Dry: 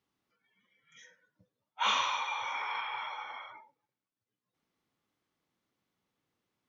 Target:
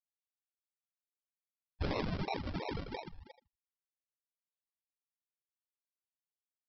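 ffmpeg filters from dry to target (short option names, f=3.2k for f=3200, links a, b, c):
-filter_complex "[0:a]afftfilt=real='re*gte(hypot(re,im),0.0631)':imag='im*gte(hypot(re,im),0.0631)':win_size=1024:overlap=0.75,equalizer=f=4.2k:t=o:w=0.34:g=8.5,bandreject=f=380:w=12,asplit=2[a][b];[b]adelay=79,lowpass=f=3.4k:p=1,volume=-12dB,asplit=2[c][d];[d]adelay=79,lowpass=f=3.4k:p=1,volume=0.26,asplit=2[e][f];[f]adelay=79,lowpass=f=3.4k:p=1,volume=0.26[g];[a][c][e][g]amix=inputs=4:normalize=0,alimiter=level_in=3dB:limit=-24dB:level=0:latency=1:release=54,volume=-3dB,aresample=11025,acrusher=samples=10:mix=1:aa=0.000001:lfo=1:lforange=6:lforate=2.9,aresample=44100,volume=1dB"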